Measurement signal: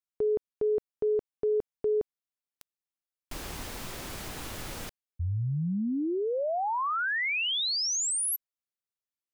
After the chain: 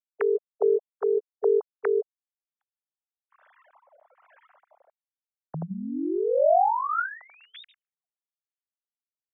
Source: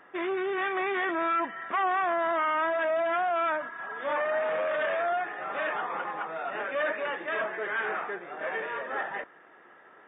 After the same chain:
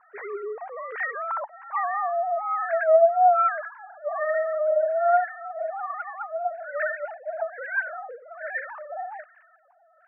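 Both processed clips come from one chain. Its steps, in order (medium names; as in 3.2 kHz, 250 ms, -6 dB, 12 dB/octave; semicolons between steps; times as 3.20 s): formants replaced by sine waves; LFO low-pass sine 1.2 Hz 700–1800 Hz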